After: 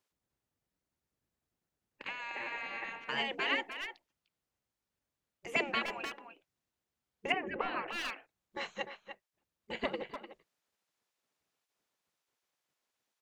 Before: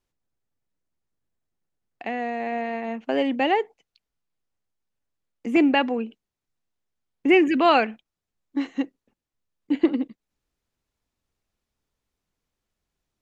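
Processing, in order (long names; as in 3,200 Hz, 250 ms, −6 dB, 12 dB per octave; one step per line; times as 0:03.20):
far-end echo of a speakerphone 300 ms, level −8 dB
gate on every frequency bin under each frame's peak −15 dB weak
0:07.32–0:07.88: low-pass filter 1,100 Hz 12 dB per octave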